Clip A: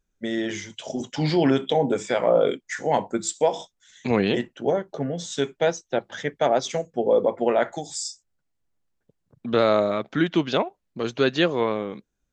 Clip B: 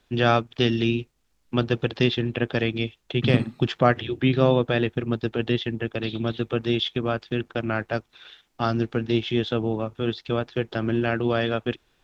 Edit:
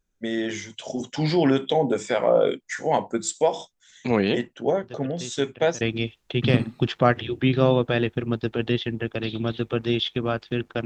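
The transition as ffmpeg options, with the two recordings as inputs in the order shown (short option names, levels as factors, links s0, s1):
-filter_complex "[1:a]asplit=2[s0][s1];[0:a]apad=whole_dur=10.85,atrim=end=10.85,atrim=end=5.812[s2];[s1]atrim=start=2.608:end=7.65[s3];[s0]atrim=start=1.63:end=2.61,asetpts=PTS-STARTPTS,volume=0.133,afade=t=in:d=0.004:c=hsin,afade=t=out:st=0.976:d=0.004:c=hsin,adelay=4830[s4];[s2][s3]acrossfade=d=0.004:c1=hsin:c2=hsin[s5];[s5][s4]amix=inputs=2:normalize=0"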